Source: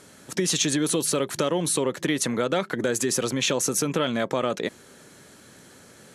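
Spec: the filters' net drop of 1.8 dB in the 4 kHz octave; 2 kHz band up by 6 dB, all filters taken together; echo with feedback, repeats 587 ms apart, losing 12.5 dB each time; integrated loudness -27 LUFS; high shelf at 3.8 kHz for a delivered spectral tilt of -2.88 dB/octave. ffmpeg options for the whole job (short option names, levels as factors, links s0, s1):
-af "equalizer=f=2000:t=o:g=8.5,highshelf=f=3800:g=5,equalizer=f=4000:t=o:g=-8.5,aecho=1:1:587|1174|1761:0.237|0.0569|0.0137,volume=0.631"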